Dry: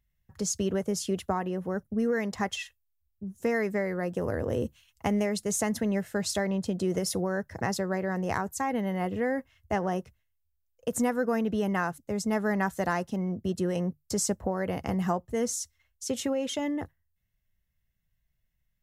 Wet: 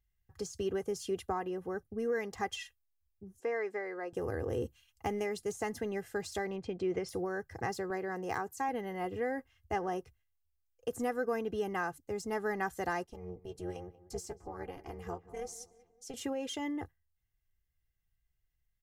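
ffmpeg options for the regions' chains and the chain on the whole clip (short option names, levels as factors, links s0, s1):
-filter_complex "[0:a]asettb=1/sr,asplit=3[s0][s1][s2];[s0]atrim=end=3.404[s3];[s1]atrim=start=3.4:end=4.13,asetpts=PTS-STARTPTS,afade=t=in:d=0.004:c=qsin,afade=t=out:st=0.726:d=0.004:c=qsin,acrossover=split=2700[s4][s5];[s5]acompressor=threshold=0.002:ratio=4:attack=1:release=60[s6];[s4][s6]amix=inputs=2:normalize=0,highpass=400,lowpass=7000[s7];[s2]atrim=start=4.126[s8];[s3][s7]acrossfade=d=0.004:c1=hsin:c2=qsin[s9];[s9][s8]acrossfade=d=0.004:c1=qsin:c2=hsin,asettb=1/sr,asplit=3[s10][s11][s12];[s10]atrim=end=6.564[s13];[s11]atrim=start=6.56:end=7.09,asetpts=PTS-STARTPTS,afade=t=in:d=0.004:c=qsin,afade=t=out:st=0.526:d=0.004:c=qsin,lowpass=3600,equalizer=f=2300:t=o:w=0.23:g=11.5[s14];[s12]atrim=start=7.086[s15];[s13][s14]acrossfade=d=0.004:c1=hsin:c2=qsin[s16];[s16][s15]acrossfade=d=0.004:c1=qsin:c2=hsin,asettb=1/sr,asplit=3[s17][s18][s19];[s17]atrim=end=7.904[s20];[s18]atrim=start=7.9:end=8.69,asetpts=PTS-STARTPTS,afade=t=in:d=0.004:c=qsin,afade=t=out:st=0.786:d=0.004:c=qsin,highpass=130,acompressor=mode=upward:threshold=0.0224:ratio=2.5:attack=3.2:release=140:knee=2.83:detection=peak[s21];[s19]atrim=start=8.686[s22];[s20][s21]acrossfade=d=0.004:c1=hsin:c2=qsin[s23];[s23][s22]acrossfade=d=0.004:c1=qsin:c2=hsin,asettb=1/sr,asplit=3[s24][s25][s26];[s24]atrim=end=13.044[s27];[s25]atrim=start=13.04:end=16.14,asetpts=PTS-STARTPTS,afade=t=in:d=0.004:c=qsin,afade=t=out:st=3.096:d=0.004:c=qsin,flanger=delay=2.7:depth=4.6:regen=33:speed=1.1:shape=sinusoidal,tremolo=f=270:d=0.857,asplit=2[s28][s29];[s29]adelay=187,lowpass=f=1500:p=1,volume=0.141,asplit=2[s30][s31];[s31]adelay=187,lowpass=f=1500:p=1,volume=0.53,asplit=2[s32][s33];[s33]adelay=187,lowpass=f=1500:p=1,volume=0.53,asplit=2[s34][s35];[s35]adelay=187,lowpass=f=1500:p=1,volume=0.53,asplit=2[s36][s37];[s37]adelay=187,lowpass=f=1500:p=1,volume=0.53[s38];[s28][s30][s32][s34][s36][s38]amix=inputs=6:normalize=0,atrim=end_sample=136710[s39];[s26]atrim=start=16.136[s40];[s27][s39]acrossfade=d=0.004:c1=hsin:c2=qsin[s41];[s41][s40]acrossfade=d=0.004:c1=qsin:c2=hsin,deesser=0.75,bandreject=f=3700:w=24,aecho=1:1:2.5:0.57,volume=0.473"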